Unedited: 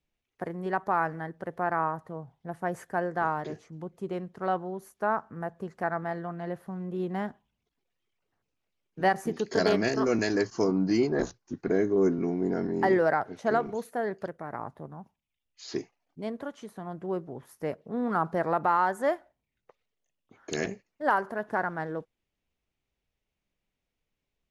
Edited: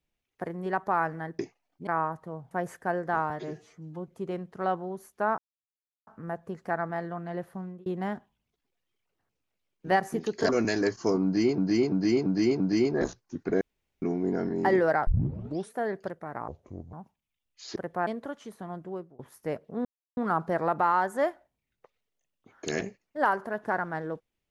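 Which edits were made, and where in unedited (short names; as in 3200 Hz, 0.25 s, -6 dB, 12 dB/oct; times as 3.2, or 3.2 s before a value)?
1.39–1.7 swap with 15.76–16.24
2.34–2.59 cut
3.38–3.9 stretch 1.5×
5.2 insert silence 0.69 s
6.73–6.99 fade out
9.62–10.03 cut
10.78–11.12 loop, 5 plays
11.79–12.2 room tone
13.25 tape start 0.66 s
14.66–14.93 speed 60%
16.89–17.36 fade out, to -22.5 dB
18.02 insert silence 0.32 s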